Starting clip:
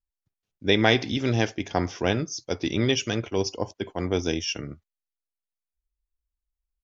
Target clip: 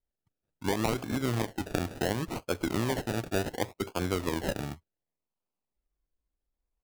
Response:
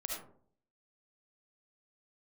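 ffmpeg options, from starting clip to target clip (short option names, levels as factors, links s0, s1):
-af "acompressor=threshold=0.0501:ratio=4,acrusher=samples=33:mix=1:aa=0.000001:lfo=1:lforange=19.8:lforate=0.69"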